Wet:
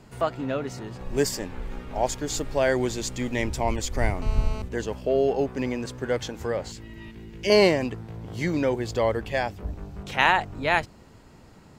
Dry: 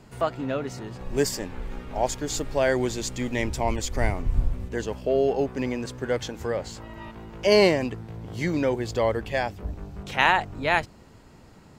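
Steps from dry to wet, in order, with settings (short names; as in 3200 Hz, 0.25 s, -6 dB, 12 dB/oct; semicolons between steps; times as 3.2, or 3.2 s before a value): 4.22–4.62 GSM buzz -38 dBFS; 6.72–7.5 band shelf 860 Hz -13 dB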